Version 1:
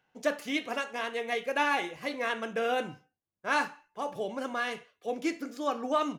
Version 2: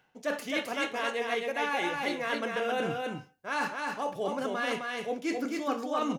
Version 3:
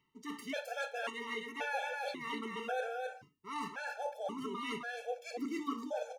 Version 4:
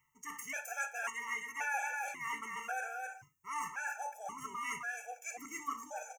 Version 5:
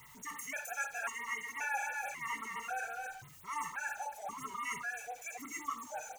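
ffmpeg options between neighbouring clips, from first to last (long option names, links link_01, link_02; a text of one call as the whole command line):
ffmpeg -i in.wav -af "areverse,acompressor=threshold=-37dB:ratio=5,areverse,aecho=1:1:262:0.668,volume=7.5dB" out.wav
ffmpeg -i in.wav -af "afftfilt=real='re*gt(sin(2*PI*0.93*pts/sr)*(1-2*mod(floor(b*sr/1024/450),2)),0)':imag='im*gt(sin(2*PI*0.93*pts/sr)*(1-2*mod(floor(b*sr/1024/450),2)),0)':win_size=1024:overlap=0.75,volume=-4.5dB" out.wav
ffmpeg -i in.wav -af "firequalizer=gain_entry='entry(130,0);entry(210,-15);entry(520,-16);entry(780,0);entry(1400,2);entry(2400,3);entry(3900,-27);entry(6200,12);entry(10000,5);entry(14000,11)':delay=0.05:min_phase=1,volume=1dB" out.wav
ffmpeg -i in.wav -af "aeval=exprs='val(0)+0.5*0.00316*sgn(val(0))':channel_layout=same,afftfilt=real='re*(1-between(b*sr/1024,260*pow(6300/260,0.5+0.5*sin(2*PI*5.9*pts/sr))/1.41,260*pow(6300/260,0.5+0.5*sin(2*PI*5.9*pts/sr))*1.41))':imag='im*(1-between(b*sr/1024,260*pow(6300/260,0.5+0.5*sin(2*PI*5.9*pts/sr))/1.41,260*pow(6300/260,0.5+0.5*sin(2*PI*5.9*pts/sr))*1.41))':win_size=1024:overlap=0.75" out.wav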